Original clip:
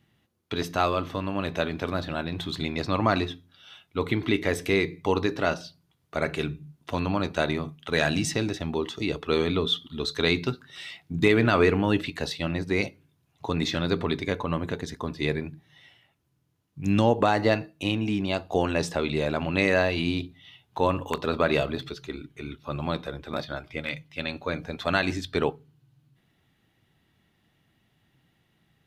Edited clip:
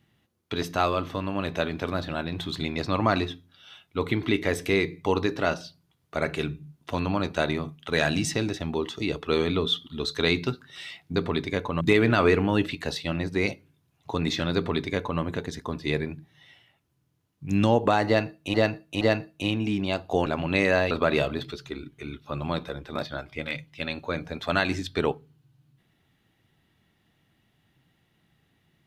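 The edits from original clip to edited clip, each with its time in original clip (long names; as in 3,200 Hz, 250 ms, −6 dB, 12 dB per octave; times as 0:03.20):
0:13.91–0:14.56: duplicate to 0:11.16
0:17.42–0:17.89: repeat, 3 plays
0:18.67–0:19.29: remove
0:19.94–0:21.29: remove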